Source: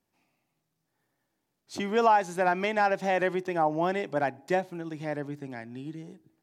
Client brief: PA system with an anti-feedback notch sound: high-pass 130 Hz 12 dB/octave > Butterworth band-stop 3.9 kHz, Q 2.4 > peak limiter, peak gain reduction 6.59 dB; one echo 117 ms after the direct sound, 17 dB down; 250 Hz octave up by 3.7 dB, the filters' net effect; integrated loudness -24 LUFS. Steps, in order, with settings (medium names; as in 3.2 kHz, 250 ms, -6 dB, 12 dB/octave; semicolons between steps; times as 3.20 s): high-pass 130 Hz 12 dB/octave; Butterworth band-stop 3.9 kHz, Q 2.4; peaking EQ 250 Hz +6 dB; delay 117 ms -17 dB; trim +5 dB; peak limiter -12 dBFS